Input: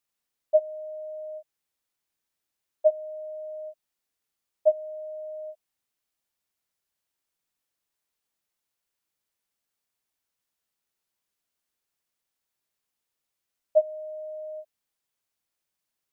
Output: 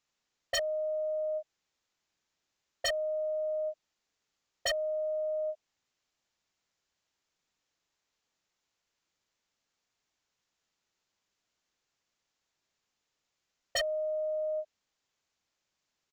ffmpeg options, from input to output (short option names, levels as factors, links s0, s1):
-af "aeval=exprs='0.299*(cos(1*acos(clip(val(0)/0.299,-1,1)))-cos(1*PI/2))+0.00422*(cos(6*acos(clip(val(0)/0.299,-1,1)))-cos(6*PI/2))':c=same,aresample=16000,aresample=44100,aeval=exprs='0.0376*(abs(mod(val(0)/0.0376+3,4)-2)-1)':c=same,volume=1.68"